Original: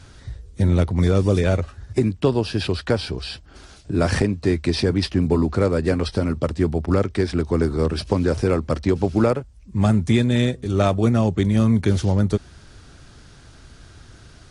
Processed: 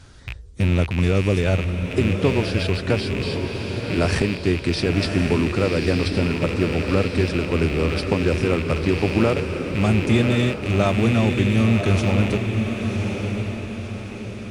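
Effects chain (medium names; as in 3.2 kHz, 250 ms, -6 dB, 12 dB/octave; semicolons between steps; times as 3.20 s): rattle on loud lows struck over -29 dBFS, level -17 dBFS; echo that smears into a reverb 1073 ms, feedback 46%, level -5 dB; trim -1.5 dB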